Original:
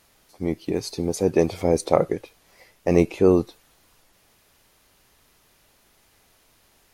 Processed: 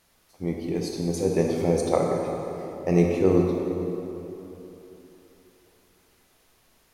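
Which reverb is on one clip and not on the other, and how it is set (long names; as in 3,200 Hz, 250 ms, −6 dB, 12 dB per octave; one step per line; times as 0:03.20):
dense smooth reverb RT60 3.4 s, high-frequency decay 0.6×, DRR −0.5 dB
level −5.5 dB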